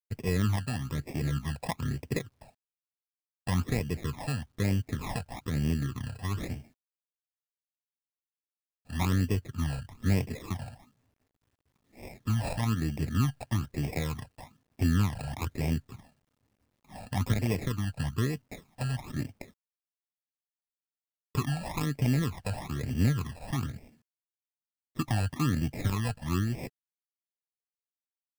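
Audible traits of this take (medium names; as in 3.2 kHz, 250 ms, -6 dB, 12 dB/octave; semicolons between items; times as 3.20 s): aliases and images of a low sample rate 1.5 kHz, jitter 0%; phasing stages 12, 1.1 Hz, lowest notch 350–1300 Hz; a quantiser's noise floor 12-bit, dither none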